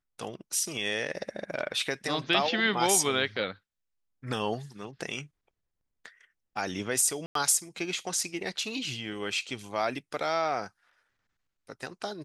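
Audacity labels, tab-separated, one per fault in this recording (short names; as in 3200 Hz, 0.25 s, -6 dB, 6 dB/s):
7.260000	7.350000	gap 93 ms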